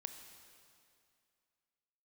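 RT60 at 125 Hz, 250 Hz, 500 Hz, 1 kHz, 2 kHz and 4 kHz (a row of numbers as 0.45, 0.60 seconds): 2.4, 2.4, 2.4, 2.4, 2.3, 2.2 seconds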